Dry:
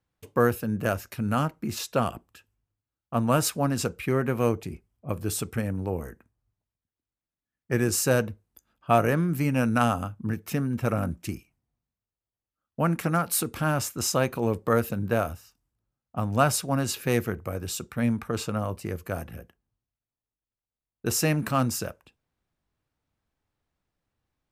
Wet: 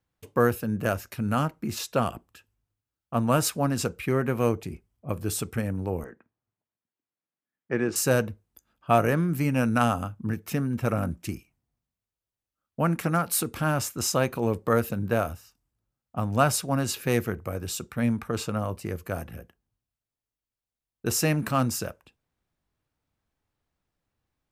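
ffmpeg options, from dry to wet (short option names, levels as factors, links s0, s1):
-filter_complex "[0:a]asettb=1/sr,asplit=3[s0][s1][s2];[s0]atrim=end=6.044[s3];[s1]atrim=start=6.04:end=7.96,asetpts=PTS-STARTPTS,afade=t=in:d=0.004:c=qsin,afade=t=out:st=1.916:d=0.004:c=qsin,highpass=190,lowpass=2800[s4];[s2]atrim=start=7.956[s5];[s3][s4]acrossfade=d=0.004:c1=hsin:c2=qsin[s6];[s6][s5]acrossfade=d=0.004:c1=qsin:c2=hsin"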